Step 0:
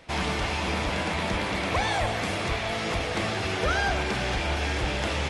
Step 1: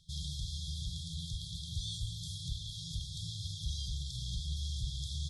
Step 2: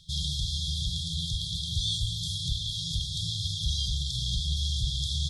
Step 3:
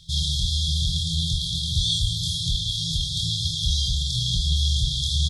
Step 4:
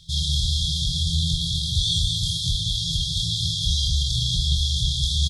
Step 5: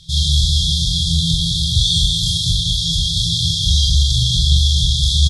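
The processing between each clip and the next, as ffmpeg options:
ffmpeg -i in.wav -af "afftfilt=real='re*(1-between(b*sr/4096,180,3200))':imag='im*(1-between(b*sr/4096,180,3200))':win_size=4096:overlap=0.75,volume=-6.5dB" out.wav
ffmpeg -i in.wav -af "equalizer=frequency=2900:width=1:gain=6,volume=7.5dB" out.wav
ffmpeg -i in.wav -filter_complex "[0:a]asplit=2[link_01][link_02];[link_02]adelay=25,volume=-4dB[link_03];[link_01][link_03]amix=inputs=2:normalize=0,volume=5dB" out.wav
ffmpeg -i in.wav -af "aecho=1:1:201:0.531" out.wav
ffmpeg -i in.wav -filter_complex "[0:a]asplit=2[link_01][link_02];[link_02]adelay=42,volume=-4dB[link_03];[link_01][link_03]amix=inputs=2:normalize=0,aresample=32000,aresample=44100,volume=5.5dB" out.wav

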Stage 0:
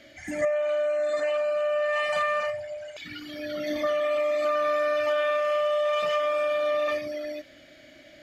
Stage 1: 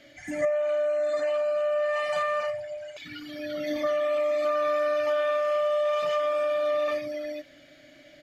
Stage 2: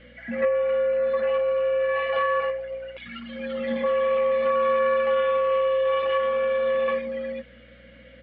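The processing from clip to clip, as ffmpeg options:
ffmpeg -i in.wav -af "aecho=1:1:6.9:0.4,volume=-2.5dB" out.wav
ffmpeg -i in.wav -af "aeval=exprs='0.158*(cos(1*acos(clip(val(0)/0.158,-1,1)))-cos(1*PI/2))+0.0355*(cos(2*acos(clip(val(0)/0.158,-1,1)))-cos(2*PI/2))':channel_layout=same,highpass=frequency=230:width_type=q:width=0.5412,highpass=frequency=230:width_type=q:width=1.307,lowpass=frequency=3300:width_type=q:width=0.5176,lowpass=frequency=3300:width_type=q:width=0.7071,lowpass=frequency=3300:width_type=q:width=1.932,afreqshift=-66,aeval=exprs='val(0)+0.00158*(sin(2*PI*60*n/s)+sin(2*PI*2*60*n/s)/2+sin(2*PI*3*60*n/s)/3+sin(2*PI*4*60*n/s)/4+sin(2*PI*5*60*n/s)/5)':channel_layout=same,volume=3dB" out.wav

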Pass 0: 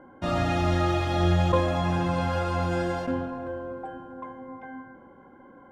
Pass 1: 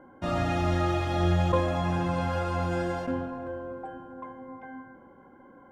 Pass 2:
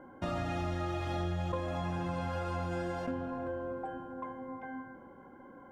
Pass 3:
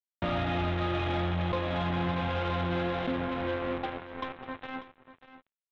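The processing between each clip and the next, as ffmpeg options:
ffmpeg -i in.wav -af "equalizer=frequency=4000:width=1.5:gain=-2.5,volume=-2dB" out.wav
ffmpeg -i in.wav -af "acompressor=threshold=-33dB:ratio=4" out.wav
ffmpeg -i in.wav -af "aresample=8000,acrusher=bits=5:mix=0:aa=0.5,aresample=44100,asoftclip=type=tanh:threshold=-27.5dB,aecho=1:1:592:0.188,volume=6dB" out.wav

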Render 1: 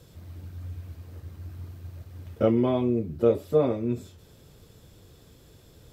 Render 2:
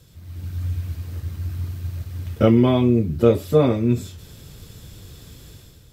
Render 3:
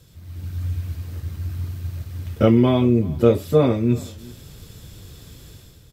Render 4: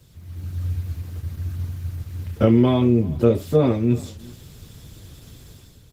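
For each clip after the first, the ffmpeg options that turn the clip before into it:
ffmpeg -i in.wav -af "equalizer=frequency=560:width=0.53:gain=-8.5,dynaudnorm=framelen=110:gausssize=7:maxgain=10dB,volume=3dB" out.wav
ffmpeg -i in.wav -filter_complex "[0:a]asplit=2[link_01][link_02];[link_02]adelay=379,volume=-22dB,highshelf=frequency=4000:gain=-8.53[link_03];[link_01][link_03]amix=inputs=2:normalize=0" out.wav
ffmpeg -i in.wav -filter_complex "[0:a]acrossover=split=440[link_01][link_02];[link_02]acompressor=threshold=-18dB:ratio=8[link_03];[link_01][link_03]amix=inputs=2:normalize=0" -ar 48000 -c:a libopus -b:a 16k out.opus

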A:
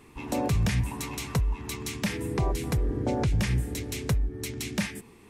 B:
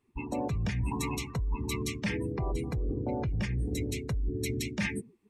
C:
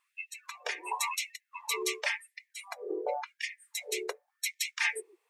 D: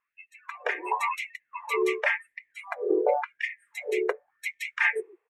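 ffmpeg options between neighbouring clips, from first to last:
ffmpeg -i in.wav -af "afftdn=noise_reduction=31:noise_floor=-37,areverse,acompressor=threshold=-35dB:ratio=16,areverse,volume=7dB" out.wav
ffmpeg -i in.wav -af "afftfilt=real='re*gte(b*sr/1024,330*pow(1800/330,0.5+0.5*sin(2*PI*0.93*pts/sr)))':imag='im*gte(b*sr/1024,330*pow(1800/330,0.5+0.5*sin(2*PI*0.93*pts/sr)))':win_size=1024:overlap=0.75,volume=5.5dB" out.wav
ffmpeg -i in.wav -af "dynaudnorm=framelen=280:gausssize=3:maxgain=11.5dB,firequalizer=gain_entry='entry(380,0);entry(890,-5);entry(1600,-1);entry(4500,-27);entry(7400,-23)':delay=0.05:min_phase=1" out.wav

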